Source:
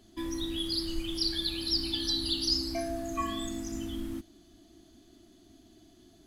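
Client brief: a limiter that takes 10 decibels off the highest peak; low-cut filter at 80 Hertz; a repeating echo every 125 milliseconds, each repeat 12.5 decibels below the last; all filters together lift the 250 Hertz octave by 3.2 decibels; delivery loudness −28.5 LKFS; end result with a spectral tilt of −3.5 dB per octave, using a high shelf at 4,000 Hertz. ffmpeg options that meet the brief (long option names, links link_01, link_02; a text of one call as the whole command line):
ffmpeg -i in.wav -af "highpass=80,equalizer=frequency=250:width_type=o:gain=4.5,highshelf=frequency=4000:gain=8,alimiter=limit=-22.5dB:level=0:latency=1,aecho=1:1:125|250|375:0.237|0.0569|0.0137,volume=2.5dB" out.wav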